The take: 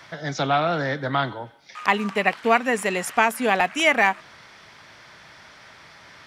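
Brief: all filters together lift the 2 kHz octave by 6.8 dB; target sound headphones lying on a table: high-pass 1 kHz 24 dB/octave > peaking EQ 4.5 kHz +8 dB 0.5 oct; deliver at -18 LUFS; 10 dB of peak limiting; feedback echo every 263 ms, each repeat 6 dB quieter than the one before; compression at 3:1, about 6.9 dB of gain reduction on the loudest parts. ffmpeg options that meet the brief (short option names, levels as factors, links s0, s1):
-af "equalizer=f=2000:t=o:g=7.5,acompressor=threshold=0.126:ratio=3,alimiter=limit=0.237:level=0:latency=1,highpass=f=1000:w=0.5412,highpass=f=1000:w=1.3066,equalizer=f=4500:t=o:w=0.5:g=8,aecho=1:1:263|526|789|1052|1315|1578:0.501|0.251|0.125|0.0626|0.0313|0.0157,volume=2.24"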